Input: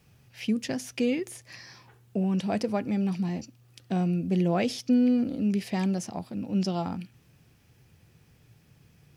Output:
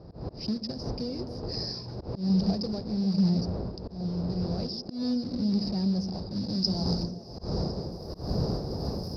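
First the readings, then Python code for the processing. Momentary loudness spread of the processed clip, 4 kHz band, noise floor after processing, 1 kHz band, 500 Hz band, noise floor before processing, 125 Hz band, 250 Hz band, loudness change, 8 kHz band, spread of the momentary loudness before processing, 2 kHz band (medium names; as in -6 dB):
10 LU, +7.0 dB, -44 dBFS, -5.5 dB, -3.0 dB, -61 dBFS, +2.5 dB, -1.5 dB, -2.0 dB, no reading, 14 LU, under -10 dB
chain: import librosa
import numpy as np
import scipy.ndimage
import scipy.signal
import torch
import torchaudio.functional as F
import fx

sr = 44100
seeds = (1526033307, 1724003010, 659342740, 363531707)

y = fx.block_float(x, sr, bits=3)
y = fx.dmg_wind(y, sr, seeds[0], corner_hz=600.0, level_db=-35.0)
y = fx.recorder_agc(y, sr, target_db=-14.0, rise_db_per_s=22.0, max_gain_db=30)
y = np.clip(y, -10.0 ** (-16.5 / 20.0), 10.0 ** (-16.5 / 20.0))
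y = scipy.signal.sosfilt(scipy.signal.butter(2, 45.0, 'highpass', fs=sr, output='sos'), y)
y = fx.peak_eq(y, sr, hz=290.0, db=-11.5, octaves=1.1)
y = fx.echo_stepped(y, sr, ms=132, hz=200.0, octaves=0.7, feedback_pct=70, wet_db=-5.5)
y = fx.auto_swell(y, sr, attack_ms=152.0)
y = fx.tremolo_random(y, sr, seeds[1], hz=3.5, depth_pct=55)
y = fx.filter_sweep_lowpass(y, sr, from_hz=2900.0, to_hz=10000.0, start_s=6.08, end_s=8.09, q=1.1)
y = fx.curve_eq(y, sr, hz=(350.0, 2100.0, 3200.0, 5000.0, 7300.0, 12000.0), db=(0, -28, -25, 14, -25, -4))
y = F.gain(torch.from_numpy(y), 2.0).numpy()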